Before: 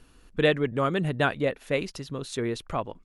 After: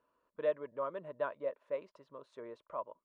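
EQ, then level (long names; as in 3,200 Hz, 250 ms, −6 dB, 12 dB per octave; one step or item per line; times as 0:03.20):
pair of resonant band-passes 770 Hz, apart 0.7 octaves
−4.5 dB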